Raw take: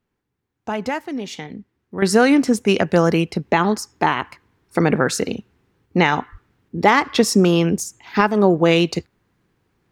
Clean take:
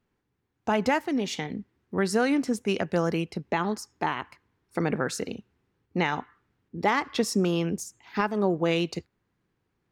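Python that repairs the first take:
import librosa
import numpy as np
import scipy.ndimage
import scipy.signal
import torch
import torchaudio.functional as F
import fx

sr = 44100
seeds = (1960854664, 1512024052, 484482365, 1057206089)

y = fx.highpass(x, sr, hz=140.0, slope=24, at=(6.31, 6.43), fade=0.02)
y = fx.gain(y, sr, db=fx.steps((0.0, 0.0), (2.02, -10.0)))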